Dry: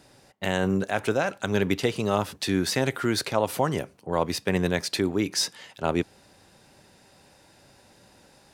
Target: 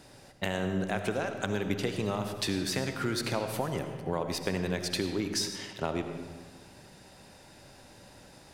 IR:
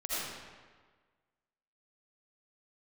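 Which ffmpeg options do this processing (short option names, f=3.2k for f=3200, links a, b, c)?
-filter_complex "[0:a]acompressor=threshold=-30dB:ratio=6,asplit=2[a][b];[1:a]atrim=start_sample=2205,lowshelf=f=170:g=9.5[c];[b][c]afir=irnorm=-1:irlink=0,volume=-10.5dB[d];[a][d]amix=inputs=2:normalize=0"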